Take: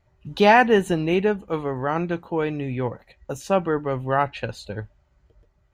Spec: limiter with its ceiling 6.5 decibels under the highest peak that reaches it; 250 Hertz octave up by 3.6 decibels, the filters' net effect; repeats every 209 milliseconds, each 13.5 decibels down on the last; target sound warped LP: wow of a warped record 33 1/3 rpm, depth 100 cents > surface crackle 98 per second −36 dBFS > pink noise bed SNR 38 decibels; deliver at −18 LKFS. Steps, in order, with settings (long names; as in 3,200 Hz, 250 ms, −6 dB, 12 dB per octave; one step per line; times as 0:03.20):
parametric band 250 Hz +5 dB
brickwall limiter −10.5 dBFS
repeating echo 209 ms, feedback 21%, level −13.5 dB
wow of a warped record 33 1/3 rpm, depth 100 cents
surface crackle 98 per second −36 dBFS
pink noise bed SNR 38 dB
level +5 dB